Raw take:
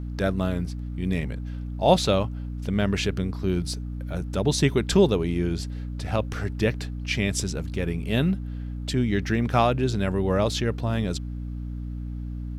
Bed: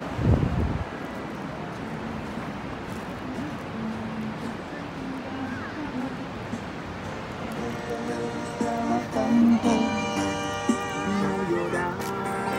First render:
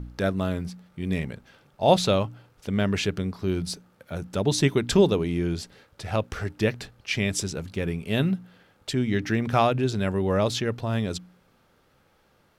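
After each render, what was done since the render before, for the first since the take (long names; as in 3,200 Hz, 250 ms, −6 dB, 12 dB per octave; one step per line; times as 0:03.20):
hum removal 60 Hz, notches 5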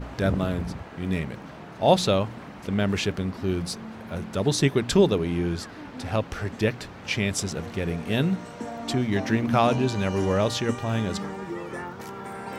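mix in bed −8 dB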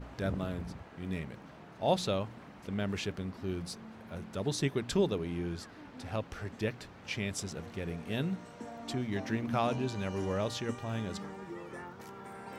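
level −10 dB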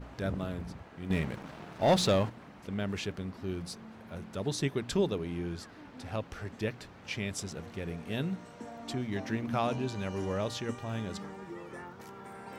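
0:01.10–0:02.30: leveller curve on the samples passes 2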